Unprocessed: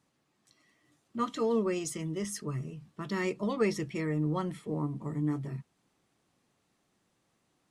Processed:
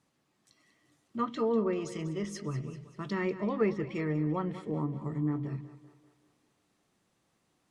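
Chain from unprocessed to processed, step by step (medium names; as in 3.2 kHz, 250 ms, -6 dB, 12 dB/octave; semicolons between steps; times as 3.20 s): low-pass that closes with the level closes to 2 kHz, closed at -27 dBFS; two-band feedback delay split 340 Hz, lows 107 ms, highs 194 ms, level -13.5 dB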